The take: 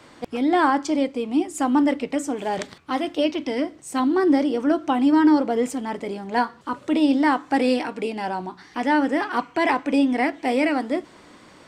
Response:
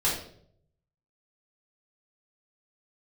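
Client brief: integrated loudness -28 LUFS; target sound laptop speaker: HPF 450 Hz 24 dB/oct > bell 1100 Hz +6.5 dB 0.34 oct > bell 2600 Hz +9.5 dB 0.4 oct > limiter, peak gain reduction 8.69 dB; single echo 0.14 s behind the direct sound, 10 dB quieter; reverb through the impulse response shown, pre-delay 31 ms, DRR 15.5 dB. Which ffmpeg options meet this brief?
-filter_complex "[0:a]aecho=1:1:140:0.316,asplit=2[a][b];[1:a]atrim=start_sample=2205,adelay=31[c];[b][c]afir=irnorm=-1:irlink=0,volume=-26dB[d];[a][d]amix=inputs=2:normalize=0,highpass=f=450:w=0.5412,highpass=f=450:w=1.3066,equalizer=f=1.1k:t=o:w=0.34:g=6.5,equalizer=f=2.6k:t=o:w=0.4:g=9.5,volume=-2dB,alimiter=limit=-16.5dB:level=0:latency=1"

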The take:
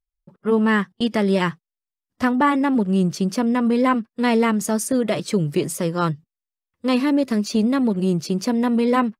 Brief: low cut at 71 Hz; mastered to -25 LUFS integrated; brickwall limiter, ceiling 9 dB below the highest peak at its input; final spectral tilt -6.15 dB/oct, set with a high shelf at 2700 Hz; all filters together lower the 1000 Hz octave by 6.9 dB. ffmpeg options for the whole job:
-af "highpass=71,equalizer=f=1k:t=o:g=-7.5,highshelf=f=2.7k:g=-6.5,volume=2dB,alimiter=limit=-17dB:level=0:latency=1"

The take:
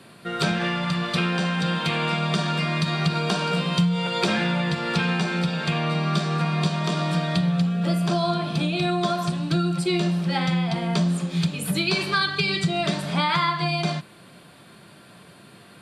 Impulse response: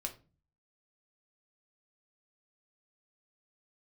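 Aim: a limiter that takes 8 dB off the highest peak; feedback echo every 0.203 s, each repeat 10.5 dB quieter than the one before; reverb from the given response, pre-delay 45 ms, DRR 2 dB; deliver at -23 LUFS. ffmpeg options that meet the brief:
-filter_complex "[0:a]alimiter=limit=-16dB:level=0:latency=1,aecho=1:1:203|406|609:0.299|0.0896|0.0269,asplit=2[a][b];[1:a]atrim=start_sample=2205,adelay=45[c];[b][c]afir=irnorm=-1:irlink=0,volume=-1.5dB[d];[a][d]amix=inputs=2:normalize=0,volume=-2dB"

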